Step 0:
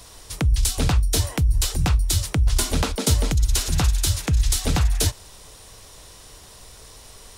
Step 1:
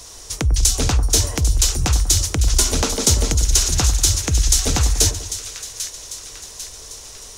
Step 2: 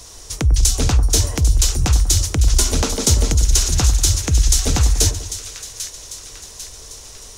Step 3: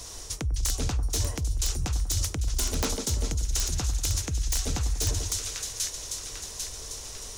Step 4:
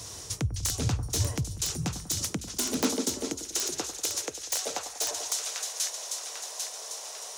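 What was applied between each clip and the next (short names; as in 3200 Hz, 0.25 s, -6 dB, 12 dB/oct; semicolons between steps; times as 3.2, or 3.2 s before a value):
fifteen-band EQ 160 Hz -5 dB, 400 Hz +3 dB, 6300 Hz +11 dB; split-band echo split 1400 Hz, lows 96 ms, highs 0.796 s, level -10.5 dB; gain +1.5 dB
low shelf 270 Hz +4 dB; gain -1 dB
reverse; compressor 12:1, threshold -22 dBFS, peak gain reduction 13.5 dB; reverse; wrapped overs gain 15 dB; gain -1.5 dB
high-pass sweep 110 Hz -> 670 Hz, 1.09–5.05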